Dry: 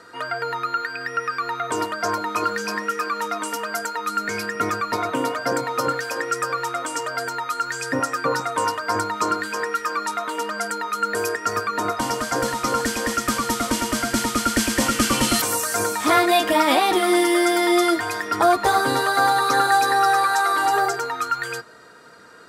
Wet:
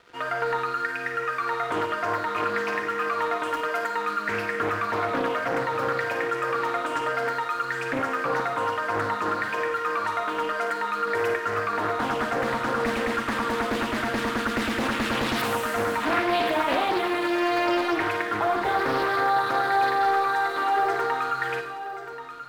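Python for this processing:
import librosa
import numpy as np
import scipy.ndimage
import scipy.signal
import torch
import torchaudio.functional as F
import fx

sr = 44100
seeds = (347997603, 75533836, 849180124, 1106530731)

p1 = fx.band_shelf(x, sr, hz=7600.0, db=-15.5, octaves=1.7)
p2 = fx.over_compress(p1, sr, threshold_db=-25.0, ratio=-1.0)
p3 = p1 + F.gain(torch.from_numpy(p2), 1.0).numpy()
p4 = np.sign(p3) * np.maximum(np.abs(p3) - 10.0 ** (-38.0 / 20.0), 0.0)
p5 = p4 + fx.echo_single(p4, sr, ms=1083, db=-11.5, dry=0)
p6 = fx.rev_schroeder(p5, sr, rt60_s=0.77, comb_ms=38, drr_db=4.5)
p7 = fx.doppler_dist(p6, sr, depth_ms=0.54)
y = F.gain(torch.from_numpy(p7), -9.0).numpy()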